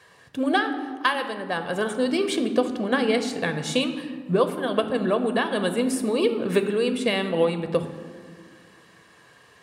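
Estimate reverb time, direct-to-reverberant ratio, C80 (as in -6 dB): 1.7 s, 7.5 dB, 11.0 dB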